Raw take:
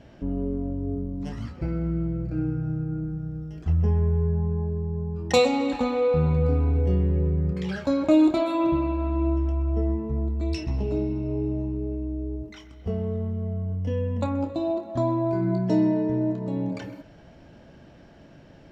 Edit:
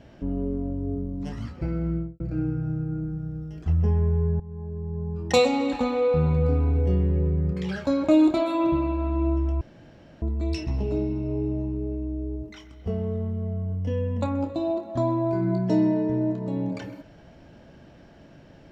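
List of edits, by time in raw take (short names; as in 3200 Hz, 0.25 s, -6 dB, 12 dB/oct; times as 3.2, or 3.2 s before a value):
1.92–2.2 studio fade out
4.4–5.11 fade in, from -17.5 dB
9.61–10.22 room tone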